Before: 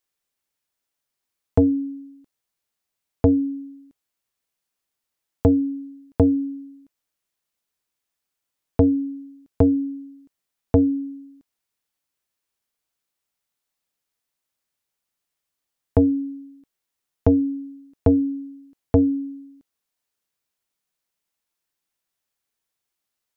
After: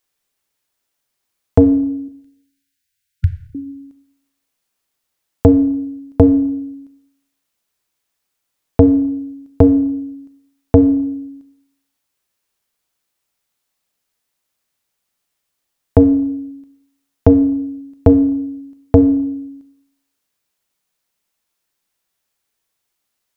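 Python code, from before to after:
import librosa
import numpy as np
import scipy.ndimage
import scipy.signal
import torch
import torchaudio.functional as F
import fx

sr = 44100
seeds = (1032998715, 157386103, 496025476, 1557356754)

y = fx.brickwall_bandstop(x, sr, low_hz=160.0, high_hz=1400.0, at=(2.08, 3.55))
y = fx.rev_schroeder(y, sr, rt60_s=0.75, comb_ms=28, drr_db=10.5)
y = y * librosa.db_to_amplitude(7.0)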